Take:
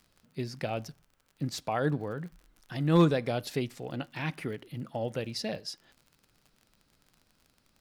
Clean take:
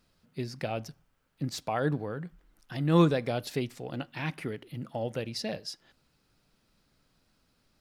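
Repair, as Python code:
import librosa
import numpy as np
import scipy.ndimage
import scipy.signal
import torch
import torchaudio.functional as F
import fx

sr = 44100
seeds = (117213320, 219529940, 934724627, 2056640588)

y = fx.fix_declip(x, sr, threshold_db=-14.5)
y = fx.fix_declick_ar(y, sr, threshold=6.5)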